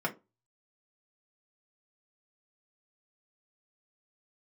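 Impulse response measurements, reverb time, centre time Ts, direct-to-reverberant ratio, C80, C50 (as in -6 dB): 0.25 s, 8 ms, -2.5 dB, 25.0 dB, 17.5 dB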